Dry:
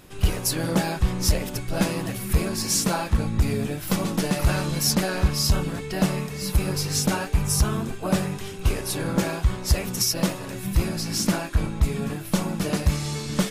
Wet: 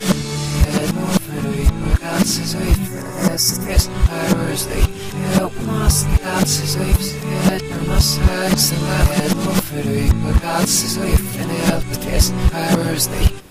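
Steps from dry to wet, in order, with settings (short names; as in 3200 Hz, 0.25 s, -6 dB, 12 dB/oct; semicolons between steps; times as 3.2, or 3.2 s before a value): whole clip reversed; spectral gain 2.87–3.7, 2300–4900 Hz -10 dB; gain +7 dB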